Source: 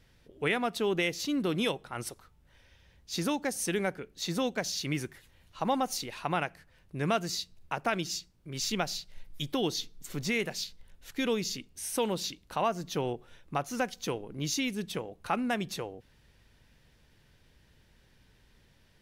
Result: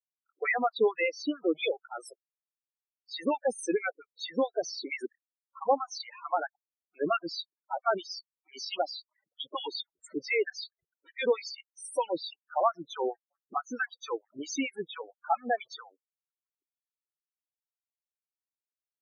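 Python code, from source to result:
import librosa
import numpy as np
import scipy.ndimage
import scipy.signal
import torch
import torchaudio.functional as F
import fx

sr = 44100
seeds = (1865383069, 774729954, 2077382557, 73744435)

y = fx.dereverb_blind(x, sr, rt60_s=0.88)
y = fx.backlash(y, sr, play_db=-44.0)
y = fx.filter_lfo_highpass(y, sr, shape='sine', hz=4.5, low_hz=330.0, high_hz=1700.0, q=1.5)
y = fx.spec_topn(y, sr, count=8)
y = F.gain(torch.from_numpy(y), 4.0).numpy()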